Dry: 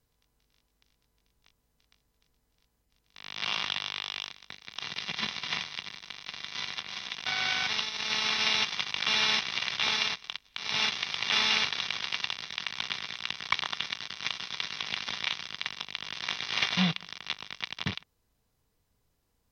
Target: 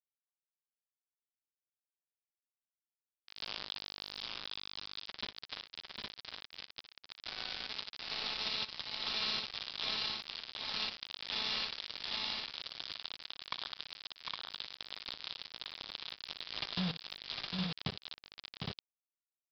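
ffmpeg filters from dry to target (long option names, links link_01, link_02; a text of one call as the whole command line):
ffmpeg -i in.wav -filter_complex "[0:a]equalizer=frequency=2000:width_type=o:width=1.5:gain=-14,acrusher=bits=4:mix=0:aa=0.000001,acompressor=threshold=-35dB:ratio=6,highshelf=frequency=3200:gain=8,asoftclip=type=hard:threshold=-26.5dB,asplit=2[link_01][link_02];[link_02]aecho=0:1:60|754|813:0.2|0.562|0.668[link_03];[link_01][link_03]amix=inputs=2:normalize=0,aresample=11025,aresample=44100,volume=1dB" out.wav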